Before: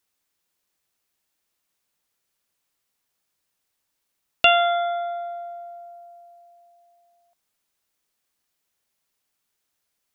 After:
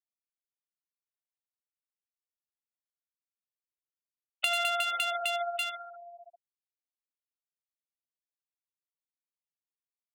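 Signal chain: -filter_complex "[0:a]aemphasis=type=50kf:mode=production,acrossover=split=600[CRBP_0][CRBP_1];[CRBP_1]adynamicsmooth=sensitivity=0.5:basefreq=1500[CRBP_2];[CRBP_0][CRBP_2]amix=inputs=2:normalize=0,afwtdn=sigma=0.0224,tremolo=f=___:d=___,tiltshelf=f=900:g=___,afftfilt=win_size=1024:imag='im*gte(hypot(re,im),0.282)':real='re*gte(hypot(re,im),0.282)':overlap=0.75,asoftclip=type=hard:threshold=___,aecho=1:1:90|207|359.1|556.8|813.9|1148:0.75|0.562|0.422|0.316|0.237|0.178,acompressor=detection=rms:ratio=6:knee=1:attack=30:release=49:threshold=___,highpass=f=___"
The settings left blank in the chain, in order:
15, 0.4, -8, -11.5dB, -30dB, 62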